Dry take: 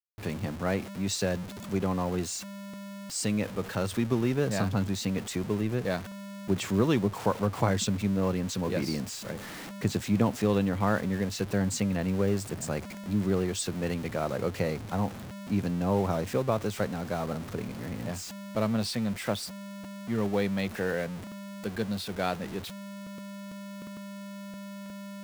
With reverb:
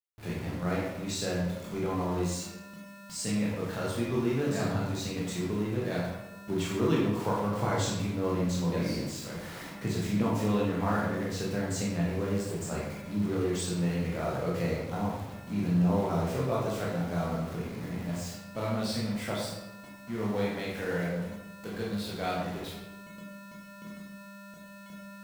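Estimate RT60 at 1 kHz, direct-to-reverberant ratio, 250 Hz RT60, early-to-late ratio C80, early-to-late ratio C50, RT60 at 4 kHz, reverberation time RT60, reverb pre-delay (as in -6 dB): 1.0 s, -5.5 dB, 1.1 s, 3.5 dB, 1.0 dB, 0.65 s, 1.0 s, 16 ms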